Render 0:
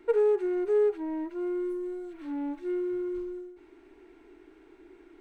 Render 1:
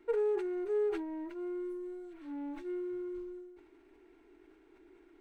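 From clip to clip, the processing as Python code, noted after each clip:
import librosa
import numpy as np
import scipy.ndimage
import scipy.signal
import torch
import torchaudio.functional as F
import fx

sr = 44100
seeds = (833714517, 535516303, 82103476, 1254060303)

y = fx.sustainer(x, sr, db_per_s=54.0)
y = y * 10.0 ** (-7.5 / 20.0)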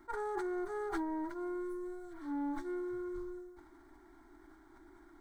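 y = fx.fixed_phaser(x, sr, hz=1100.0, stages=4)
y = y + 10.0 ** (-22.5 / 20.0) * np.pad(y, (int(305 * sr / 1000.0), 0))[:len(y)]
y = fx.attack_slew(y, sr, db_per_s=540.0)
y = y * 10.0 ** (9.0 / 20.0)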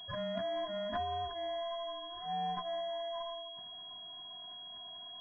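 y = fx.band_invert(x, sr, width_hz=1000)
y = fx.low_shelf(y, sr, hz=110.0, db=-7.5)
y = fx.pwm(y, sr, carrier_hz=3300.0)
y = y * 10.0 ** (1.0 / 20.0)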